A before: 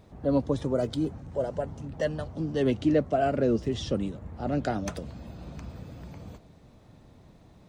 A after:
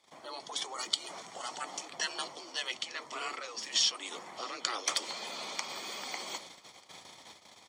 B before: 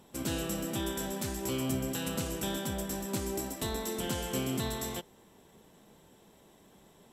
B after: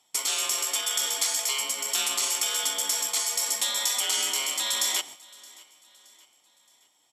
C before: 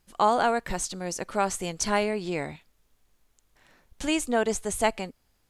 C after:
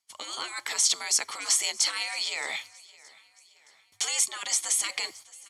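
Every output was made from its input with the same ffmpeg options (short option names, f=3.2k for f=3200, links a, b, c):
-af "acontrast=83,agate=range=-22dB:threshold=-45dB:ratio=16:detection=peak,aecho=1:1:0.9:0.49,areverse,acompressor=threshold=-29dB:ratio=4,areverse,afreqshift=-110,alimiter=limit=-24dB:level=0:latency=1:release=27,afftfilt=real='re*lt(hypot(re,im),0.0562)':imag='im*lt(hypot(re,im),0.0562)':win_size=1024:overlap=0.75,crystalizer=i=7.5:c=0,highpass=380,lowpass=6.5k,aecho=1:1:621|1242|1863:0.0708|0.0326|0.015,volume=2dB"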